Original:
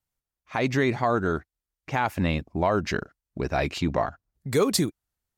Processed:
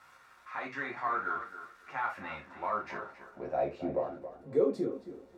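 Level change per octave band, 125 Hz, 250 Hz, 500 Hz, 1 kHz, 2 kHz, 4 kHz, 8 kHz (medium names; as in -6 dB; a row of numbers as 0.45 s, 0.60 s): -21.0 dB, -12.0 dB, -6.5 dB, -6.0 dB, -8.0 dB, -22.0 dB, under -25 dB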